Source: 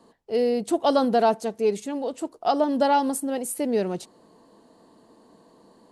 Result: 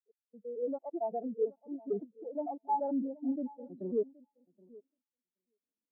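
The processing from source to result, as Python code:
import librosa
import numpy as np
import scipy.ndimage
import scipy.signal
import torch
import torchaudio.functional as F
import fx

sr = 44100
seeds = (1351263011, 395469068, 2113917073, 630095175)

p1 = fx.block_reorder(x, sr, ms=112.0, group=3)
p2 = fx.tremolo_random(p1, sr, seeds[0], hz=1.6, depth_pct=75)
p3 = fx.rider(p2, sr, range_db=5, speed_s=0.5)
p4 = 10.0 ** (-26.5 / 20.0) * np.tanh(p3 / 10.0 ** (-26.5 / 20.0))
p5 = fx.quant_float(p4, sr, bits=2)
p6 = fx.air_absorb(p5, sr, metres=200.0)
p7 = p6 + fx.echo_feedback(p6, sr, ms=774, feedback_pct=23, wet_db=-9, dry=0)
p8 = fx.spectral_expand(p7, sr, expansion=2.5)
y = F.gain(torch.from_numpy(p8), 2.5).numpy()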